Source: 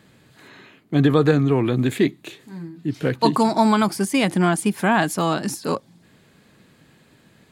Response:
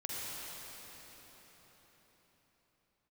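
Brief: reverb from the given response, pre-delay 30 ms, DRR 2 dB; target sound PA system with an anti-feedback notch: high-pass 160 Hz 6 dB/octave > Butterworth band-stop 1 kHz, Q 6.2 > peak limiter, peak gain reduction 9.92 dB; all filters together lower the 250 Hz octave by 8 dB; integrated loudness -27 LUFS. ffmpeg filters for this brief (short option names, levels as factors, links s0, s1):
-filter_complex "[0:a]equalizer=f=250:t=o:g=-8.5,asplit=2[s0][s1];[1:a]atrim=start_sample=2205,adelay=30[s2];[s1][s2]afir=irnorm=-1:irlink=0,volume=0.562[s3];[s0][s3]amix=inputs=2:normalize=0,highpass=f=160:p=1,asuperstop=centerf=1000:order=8:qfactor=6.2,volume=0.794,alimiter=limit=0.158:level=0:latency=1"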